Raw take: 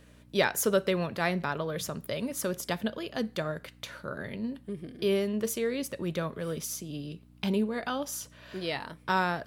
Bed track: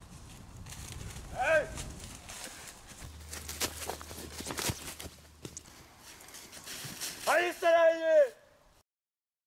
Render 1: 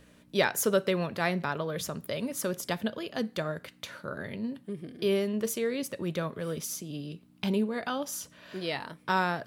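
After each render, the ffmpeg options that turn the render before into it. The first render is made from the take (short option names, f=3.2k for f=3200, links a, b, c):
-af "bandreject=f=60:t=h:w=4,bandreject=f=120:t=h:w=4"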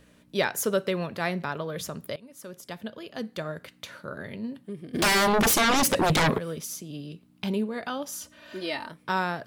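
-filter_complex "[0:a]asplit=3[a][b][c];[a]afade=t=out:st=4.93:d=0.02[d];[b]aeval=exprs='0.126*sin(PI/2*6.31*val(0)/0.126)':c=same,afade=t=in:st=4.93:d=0.02,afade=t=out:st=6.37:d=0.02[e];[c]afade=t=in:st=6.37:d=0.02[f];[d][e][f]amix=inputs=3:normalize=0,asettb=1/sr,asplit=3[g][h][i];[g]atrim=end=8.214[j];[h]atrim=start=8.21:end=8.89,asetpts=PTS-STARTPTS,afade=t=in:d=0.004:c=qsin,afade=t=out:st=0.676:d=0.004:c=qsin,aecho=1:1:3.3:0.68,atrim=end_sample=29988[k];[i]atrim=start=8.886[l];[j][k]acrossfade=d=0.004:c1=hsin:c2=qsin[m];[m][l]acrossfade=d=0.004:c1=qsin:c2=hsin,asplit=2[n][o];[n]atrim=end=2.16,asetpts=PTS-STARTPTS,afade=t=out:st=2.156:d=0.004:c=hsin:silence=0.105925[p];[o]atrim=start=2.16,asetpts=PTS-STARTPTS,afade=t=in:d=1.47:silence=0.105925[q];[p][q]concat=n=2:v=0:a=1"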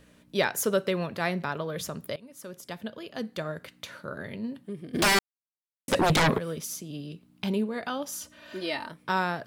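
-filter_complex "[0:a]asplit=3[a][b][c];[a]atrim=end=5.19,asetpts=PTS-STARTPTS,afade=t=out:st=5.186:d=0.004:c=hsin[d];[b]atrim=start=5.19:end=5.88,asetpts=PTS-STARTPTS,volume=0[e];[c]atrim=start=5.88,asetpts=PTS-STARTPTS,afade=t=in:d=0.004:c=hsin[f];[d][e][f]concat=n=3:v=0:a=1"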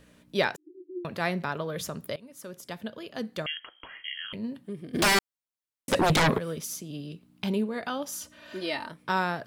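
-filter_complex "[0:a]asettb=1/sr,asplit=3[a][b][c];[a]atrim=end=0.564[d];[b]atrim=start=0.56:end=1.05,asetpts=PTS-STARTPTS,afade=t=in:d=0.004:c=qsin,afade=t=out:st=0.486:d=0.004:c=qsin,asuperpass=centerf=330:order=12:qfactor=4.8[e];[c]atrim=start=1.046[f];[d][e]acrossfade=d=0.004:c1=hsin:c2=qsin[g];[g][f]acrossfade=d=0.004:c1=qsin:c2=hsin,asettb=1/sr,asplit=3[h][i][j];[h]atrim=end=3.464[k];[i]atrim=start=3.46:end=4.33,asetpts=PTS-STARTPTS,afade=t=in:d=0.004:c=qsin,afade=t=out:st=0.866:d=0.004:c=qsin,lowpass=f=2.9k:t=q:w=0.5098,lowpass=f=2.9k:t=q:w=0.6013,lowpass=f=2.9k:t=q:w=0.9,lowpass=f=2.9k:t=q:w=2.563,afreqshift=-3400[l];[j]atrim=start=4.326[m];[k][l]acrossfade=d=0.004:c1=hsin:c2=qsin[n];[n][m]acrossfade=d=0.004:c1=qsin:c2=hsin,asettb=1/sr,asplit=3[o][p][q];[o]atrim=end=8.374[r];[p]atrim=start=8.37:end=9.14,asetpts=PTS-STARTPTS,afade=t=in:d=0.004:c=qsin,afade=t=out:st=0.766:d=0.004:c=qsin,equalizer=f=15k:w=4.8:g=-10.5[s];[q]atrim=start=9.136[t];[r][s]acrossfade=d=0.004:c1=hsin:c2=qsin[u];[u][t]acrossfade=d=0.004:c1=qsin:c2=hsin"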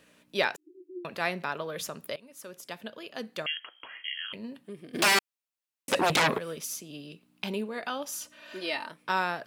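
-af "highpass=f=420:p=1,equalizer=f=2.6k:w=7.3:g=5"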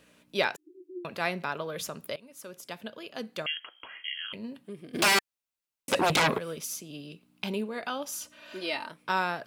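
-af "lowshelf=f=100:g=6,bandreject=f=1.8k:w=19"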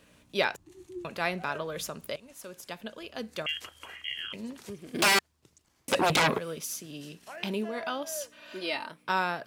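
-filter_complex "[1:a]volume=-17dB[a];[0:a][a]amix=inputs=2:normalize=0"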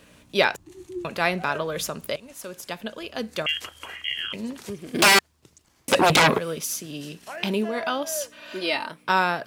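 -af "volume=7dB"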